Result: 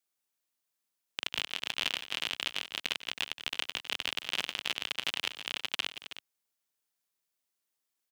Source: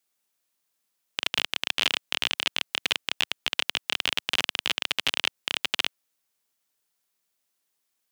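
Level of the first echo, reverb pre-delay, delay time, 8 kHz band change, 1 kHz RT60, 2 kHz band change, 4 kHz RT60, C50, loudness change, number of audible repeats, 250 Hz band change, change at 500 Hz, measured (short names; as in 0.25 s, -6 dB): -19.0 dB, none, 95 ms, -7.0 dB, none, -7.0 dB, none, none, -7.0 dB, 3, -7.0 dB, -7.0 dB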